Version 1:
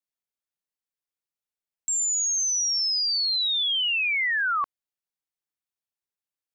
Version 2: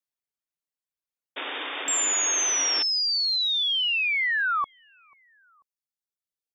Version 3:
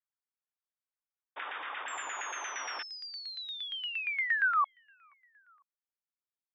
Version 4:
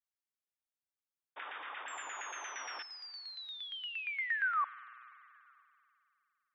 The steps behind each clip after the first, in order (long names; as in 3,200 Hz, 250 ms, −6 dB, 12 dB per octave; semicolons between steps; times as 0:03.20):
repeating echo 490 ms, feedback 30%, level −24 dB; reverb reduction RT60 1.5 s; sound drawn into the spectrogram noise, 0:01.36–0:02.83, 260–3,700 Hz −33 dBFS
auto-filter band-pass saw down 8.6 Hz 840–1,800 Hz
spring reverb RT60 3 s, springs 47 ms, chirp 45 ms, DRR 16.5 dB; level −5 dB